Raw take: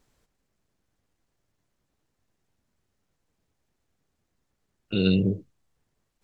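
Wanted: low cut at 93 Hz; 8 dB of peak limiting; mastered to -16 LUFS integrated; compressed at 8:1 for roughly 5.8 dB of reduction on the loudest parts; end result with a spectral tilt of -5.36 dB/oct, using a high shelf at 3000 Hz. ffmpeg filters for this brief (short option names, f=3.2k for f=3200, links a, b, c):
-af "highpass=93,highshelf=f=3k:g=8,acompressor=threshold=-22dB:ratio=8,volume=16.5dB,alimiter=limit=-4.5dB:level=0:latency=1"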